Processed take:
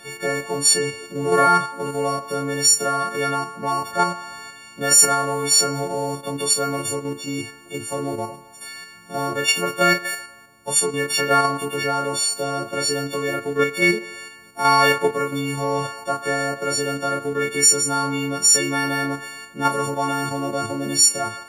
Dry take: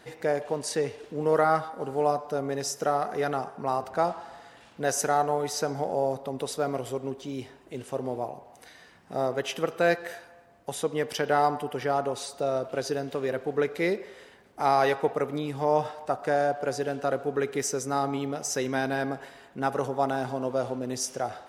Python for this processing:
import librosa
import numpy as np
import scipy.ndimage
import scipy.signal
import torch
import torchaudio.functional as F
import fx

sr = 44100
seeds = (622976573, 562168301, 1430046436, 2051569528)

p1 = fx.freq_snap(x, sr, grid_st=4)
p2 = fx.doubler(p1, sr, ms=28.0, db=-4.5)
p3 = fx.level_steps(p2, sr, step_db=11)
y = p2 + (p3 * 10.0 ** (1.0 / 20.0))